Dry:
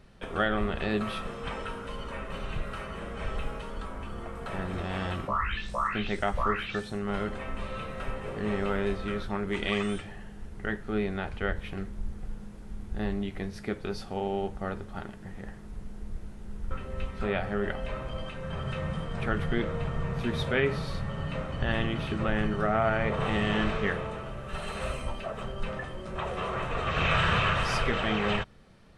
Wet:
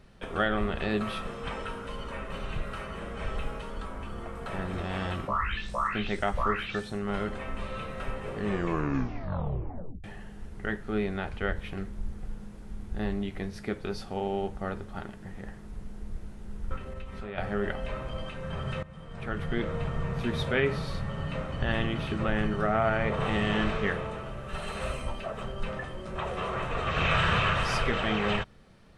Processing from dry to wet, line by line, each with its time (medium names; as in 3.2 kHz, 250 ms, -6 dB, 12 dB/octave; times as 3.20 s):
8.44 s: tape stop 1.60 s
16.76–17.38 s: compression, threshold -34 dBFS
18.83–19.74 s: fade in, from -19 dB